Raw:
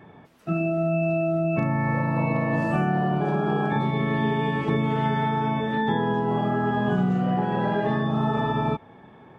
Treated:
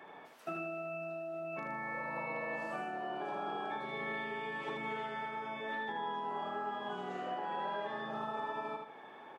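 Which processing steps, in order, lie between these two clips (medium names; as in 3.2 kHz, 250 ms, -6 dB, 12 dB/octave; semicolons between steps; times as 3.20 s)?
high-pass 530 Hz 12 dB/octave; compression 6:1, threshold -37 dBFS, peak gain reduction 12.5 dB; feedback delay 78 ms, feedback 36%, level -5 dB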